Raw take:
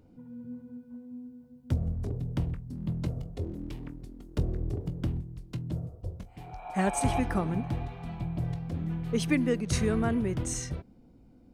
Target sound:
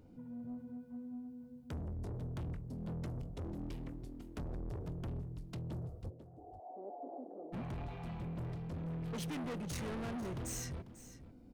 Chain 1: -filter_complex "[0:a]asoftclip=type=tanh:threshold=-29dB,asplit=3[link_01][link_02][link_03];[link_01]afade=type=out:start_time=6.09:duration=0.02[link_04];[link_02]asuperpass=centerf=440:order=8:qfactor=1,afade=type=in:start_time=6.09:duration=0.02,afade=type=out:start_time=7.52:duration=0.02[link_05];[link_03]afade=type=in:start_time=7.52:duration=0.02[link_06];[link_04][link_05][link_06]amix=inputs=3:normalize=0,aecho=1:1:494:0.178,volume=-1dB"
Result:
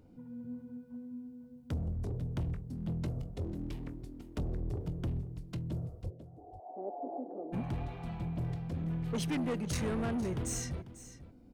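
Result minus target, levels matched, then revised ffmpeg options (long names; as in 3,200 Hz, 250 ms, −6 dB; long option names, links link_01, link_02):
soft clipping: distortion −5 dB
-filter_complex "[0:a]asoftclip=type=tanh:threshold=-38dB,asplit=3[link_01][link_02][link_03];[link_01]afade=type=out:start_time=6.09:duration=0.02[link_04];[link_02]asuperpass=centerf=440:order=8:qfactor=1,afade=type=in:start_time=6.09:duration=0.02,afade=type=out:start_time=7.52:duration=0.02[link_05];[link_03]afade=type=in:start_time=7.52:duration=0.02[link_06];[link_04][link_05][link_06]amix=inputs=3:normalize=0,aecho=1:1:494:0.178,volume=-1dB"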